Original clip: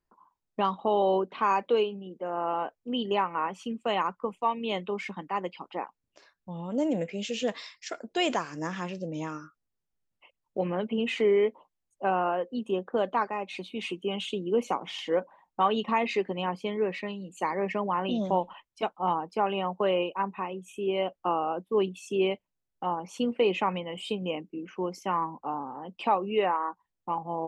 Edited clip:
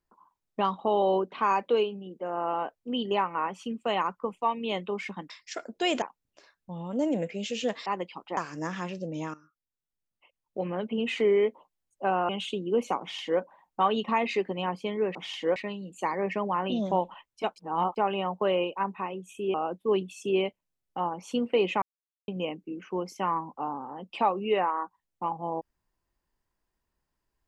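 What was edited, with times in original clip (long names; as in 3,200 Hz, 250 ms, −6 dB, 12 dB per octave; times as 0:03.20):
0:05.30–0:05.81: swap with 0:07.65–0:08.37
0:09.34–0:11.17: fade in, from −16.5 dB
0:12.29–0:14.09: remove
0:14.80–0:15.21: duplicate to 0:16.95
0:18.95–0:19.35: reverse
0:20.93–0:21.40: remove
0:23.68–0:24.14: silence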